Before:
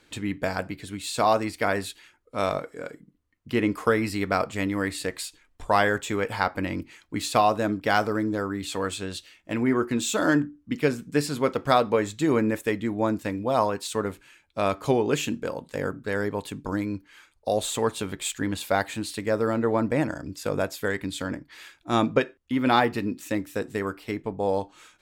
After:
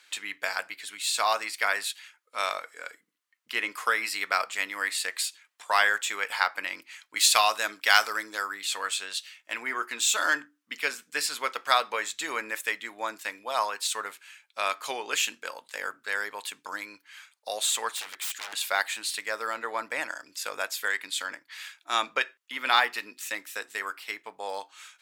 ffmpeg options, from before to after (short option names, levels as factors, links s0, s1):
-filter_complex "[0:a]asettb=1/sr,asplit=3[s0][s1][s2];[s0]atrim=end=7.164[s3];[s1]atrim=start=7.16:end=8.55,asetpts=PTS-STARTPTS,afade=t=in:d=0.004:c=qsin,afade=t=out:st=1.386:d=0.004:c=qsin,highshelf=f=2100:g=7.5[s4];[s2]atrim=start=8.546[s5];[s3][s4]acrossfade=d=0.004:c1=hsin:c2=qsin[s6];[s6][s5]acrossfade=d=0.004:c1=qsin:c2=hsin,asettb=1/sr,asplit=3[s7][s8][s9];[s7]atrim=end=17.964[s10];[s8]atrim=start=17.96:end=18.53,asetpts=PTS-STARTPTS,afade=t=in:d=0.004:c=qsin,afade=t=out:st=0.566:d=0.004:c=qsin,aeval=exprs='0.0251*(abs(mod(val(0)/0.0251+3,4)-2)-1)':c=same[s11];[s9]atrim=start=18.526[s12];[s10][s11]acrossfade=d=0.004:c1=hsin:c2=qsin[s13];[s13][s12]acrossfade=d=0.004:c1=qsin:c2=hsin,highpass=1400,volume=1.78"